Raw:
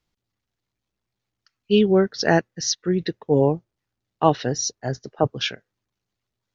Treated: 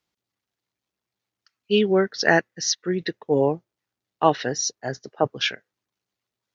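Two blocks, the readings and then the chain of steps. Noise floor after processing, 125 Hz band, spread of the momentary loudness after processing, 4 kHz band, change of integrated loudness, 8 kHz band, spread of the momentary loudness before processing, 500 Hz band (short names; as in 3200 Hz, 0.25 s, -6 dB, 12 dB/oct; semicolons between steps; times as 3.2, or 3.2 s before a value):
under -85 dBFS, -6.0 dB, 10 LU, +0.5 dB, -1.0 dB, n/a, 9 LU, -1.5 dB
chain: dynamic EQ 1900 Hz, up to +6 dB, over -41 dBFS, Q 2; HPF 280 Hz 6 dB/oct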